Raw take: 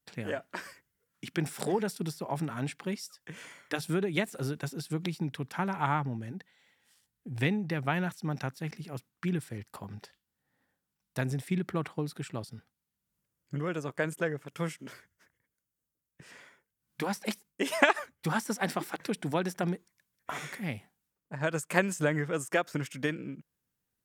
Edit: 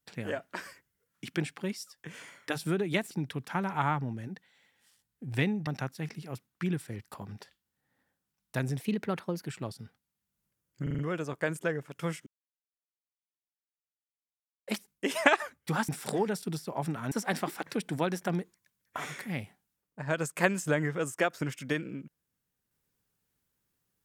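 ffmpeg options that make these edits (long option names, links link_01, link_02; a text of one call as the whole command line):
ffmpeg -i in.wav -filter_complex "[0:a]asplit=14[link_01][link_02][link_03][link_04][link_05][link_06][link_07][link_08][link_09][link_10][link_11][link_12][link_13][link_14];[link_01]atrim=end=1.422[link_15];[link_02]atrim=start=2.648:end=4.342[link_16];[link_03]atrim=start=5.148:end=7.712[link_17];[link_04]atrim=start=8.288:end=11.434[link_18];[link_05]atrim=start=11.43:end=12.19,asetpts=PTS-STARTPTS,asetrate=51156,aresample=44100,atrim=end_sample=28893,asetpts=PTS-STARTPTS[link_19];[link_06]atrim=start=12.186:end=13.592[link_20];[link_07]atrim=start=13.548:end=13.592[link_21];[link_08]atrim=start=13.548:end=13.592[link_22];[link_09]atrim=start=13.548:end=13.592[link_23];[link_10]atrim=start=13.548:end=14.83,asetpts=PTS-STARTPTS,afade=type=out:start_time=1.278:duration=0.004:curve=hsin[link_24];[link_11]atrim=start=14.83:end=17.24,asetpts=PTS-STARTPTS,volume=0[link_25];[link_12]atrim=start=17.24:end=18.452,asetpts=PTS-STARTPTS,afade=type=in:duration=0.004:curve=hsin[link_26];[link_13]atrim=start=1.418:end=2.652[link_27];[link_14]atrim=start=18.448[link_28];[link_15][link_16]acrossfade=duration=0.004:curve1=hsin:curve2=hsin[link_29];[link_29][link_17]acrossfade=duration=0.004:curve1=hsin:curve2=hsin[link_30];[link_30][link_18]acrossfade=duration=0.004:curve1=hsin:curve2=hsin[link_31];[link_31][link_19]acrossfade=duration=0.004:curve1=hsin:curve2=hsin[link_32];[link_32][link_20]acrossfade=duration=0.004:curve1=hsin:curve2=hsin[link_33];[link_33][link_21]acrossfade=duration=0.004:curve1=hsin:curve2=hsin[link_34];[link_34][link_22]acrossfade=duration=0.004:curve1=hsin:curve2=hsin[link_35];[link_35][link_23]acrossfade=duration=0.004:curve1=hsin:curve2=hsin[link_36];[link_24][link_25][link_26]concat=n=3:v=0:a=1[link_37];[link_36][link_37]acrossfade=duration=0.004:curve1=hsin:curve2=hsin[link_38];[link_38][link_27]acrossfade=duration=0.004:curve1=hsin:curve2=hsin[link_39];[link_39][link_28]acrossfade=duration=0.004:curve1=hsin:curve2=hsin" out.wav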